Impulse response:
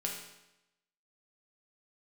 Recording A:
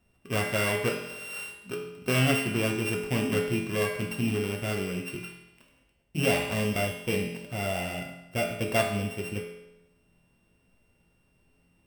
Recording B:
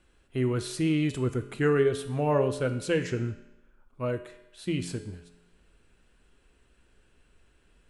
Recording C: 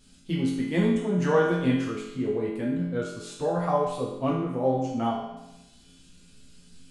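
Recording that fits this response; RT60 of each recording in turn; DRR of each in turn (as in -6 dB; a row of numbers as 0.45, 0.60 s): A; 0.90, 0.90, 0.90 s; -1.0, 8.5, -5.5 dB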